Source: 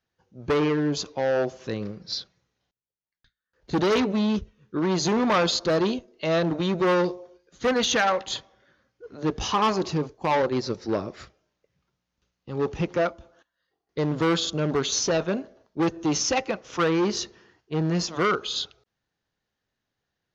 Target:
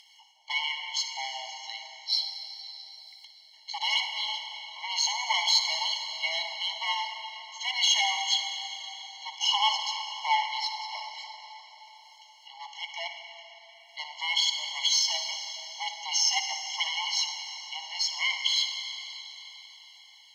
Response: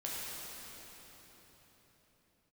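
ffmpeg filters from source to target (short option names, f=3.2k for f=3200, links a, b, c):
-filter_complex "[0:a]acompressor=mode=upward:threshold=-39dB:ratio=2.5,aexciter=amount=9.8:drive=9.9:freq=2.5k,asplit=3[a][b][c];[a]bandpass=f=300:t=q:w=8,volume=0dB[d];[b]bandpass=f=870:t=q:w=8,volume=-6dB[e];[c]bandpass=f=2.24k:t=q:w=8,volume=-9dB[f];[d][e][f]amix=inputs=3:normalize=0,asplit=2[g][h];[1:a]atrim=start_sample=2205,adelay=59[i];[h][i]afir=irnorm=-1:irlink=0,volume=-7.5dB[j];[g][j]amix=inputs=2:normalize=0,afftfilt=real='re*eq(mod(floor(b*sr/1024/560),2),1)':imag='im*eq(mod(floor(b*sr/1024/560),2),1)':win_size=1024:overlap=0.75,volume=6.5dB"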